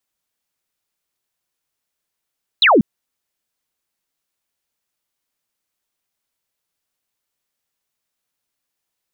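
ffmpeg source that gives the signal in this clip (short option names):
-f lavfi -i "aevalsrc='0.398*clip(t/0.002,0,1)*clip((0.19-t)/0.002,0,1)*sin(2*PI*4200*0.19/log(180/4200)*(exp(log(180/4200)*t/0.19)-1))':d=0.19:s=44100"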